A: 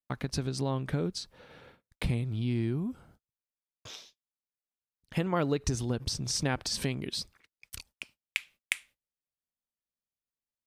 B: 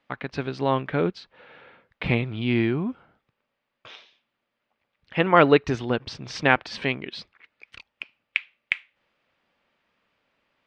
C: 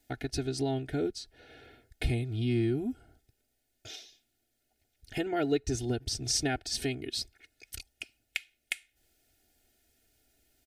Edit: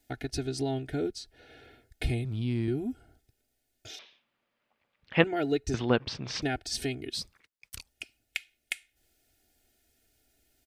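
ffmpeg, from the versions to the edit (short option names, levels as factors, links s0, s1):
-filter_complex "[0:a]asplit=2[s0][s1];[1:a]asplit=2[s2][s3];[2:a]asplit=5[s4][s5][s6][s7][s8];[s4]atrim=end=2.252[s9];[s0]atrim=start=2.248:end=2.682[s10];[s5]atrim=start=2.678:end=3.992[s11];[s2]atrim=start=3.988:end=5.242[s12];[s6]atrim=start=5.238:end=5.742[s13];[s3]atrim=start=5.738:end=6.422[s14];[s7]atrim=start=6.418:end=7.152[s15];[s1]atrim=start=7.148:end=7.892[s16];[s8]atrim=start=7.888[s17];[s9][s10]acrossfade=d=0.004:c1=hsin:c2=hsin[s18];[s18][s11]acrossfade=d=0.004:c1=hsin:c2=hsin[s19];[s19][s12]acrossfade=d=0.004:c1=hsin:c2=hsin[s20];[s20][s13]acrossfade=d=0.004:c1=hsin:c2=hsin[s21];[s21][s14]acrossfade=d=0.004:c1=hsin:c2=hsin[s22];[s22][s15]acrossfade=d=0.004:c1=hsin:c2=hsin[s23];[s23][s16]acrossfade=d=0.004:c1=hsin:c2=hsin[s24];[s24][s17]acrossfade=d=0.004:c1=hsin:c2=hsin"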